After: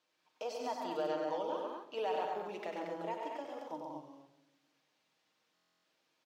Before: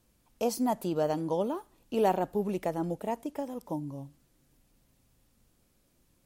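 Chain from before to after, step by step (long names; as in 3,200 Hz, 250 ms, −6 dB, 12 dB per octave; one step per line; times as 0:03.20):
high-pass filter 600 Hz 12 dB per octave
high-shelf EQ 2,700 Hz +11 dB
brickwall limiter −23.5 dBFS, peak gain reduction 8.5 dB
high-frequency loss of the air 220 metres
loudspeakers that aren't time-aligned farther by 33 metres −6 dB, 47 metres −6 dB, 63 metres −8 dB, 79 metres −6 dB
convolution reverb RT60 0.90 s, pre-delay 6 ms, DRR 6 dB
buffer that repeats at 0:05.54, samples 1,024, times 12
level −4.5 dB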